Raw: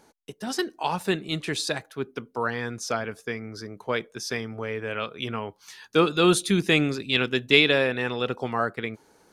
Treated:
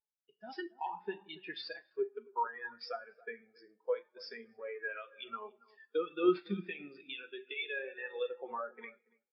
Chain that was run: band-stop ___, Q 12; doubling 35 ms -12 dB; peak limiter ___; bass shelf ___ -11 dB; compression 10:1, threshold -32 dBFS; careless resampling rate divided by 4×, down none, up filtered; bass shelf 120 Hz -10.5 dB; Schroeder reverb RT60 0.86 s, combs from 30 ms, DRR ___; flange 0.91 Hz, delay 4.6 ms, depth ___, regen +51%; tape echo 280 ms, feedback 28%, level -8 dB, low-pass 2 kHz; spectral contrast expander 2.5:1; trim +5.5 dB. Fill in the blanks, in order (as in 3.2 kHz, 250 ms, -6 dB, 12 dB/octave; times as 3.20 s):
3.9 kHz, -13 dBFS, 450 Hz, 7 dB, 1.7 ms